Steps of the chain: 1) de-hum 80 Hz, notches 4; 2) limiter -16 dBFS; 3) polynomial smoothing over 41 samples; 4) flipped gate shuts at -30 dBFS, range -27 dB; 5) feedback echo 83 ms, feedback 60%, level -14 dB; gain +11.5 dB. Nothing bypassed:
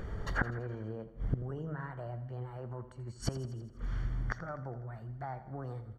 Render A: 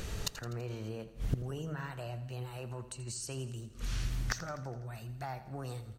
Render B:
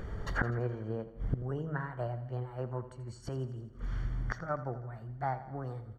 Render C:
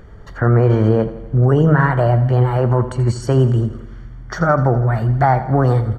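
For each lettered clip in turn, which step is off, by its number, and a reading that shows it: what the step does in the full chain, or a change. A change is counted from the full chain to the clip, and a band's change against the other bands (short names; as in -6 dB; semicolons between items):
3, 8 kHz band +12.0 dB; 2, mean gain reduction 1.5 dB; 4, crest factor change -10.0 dB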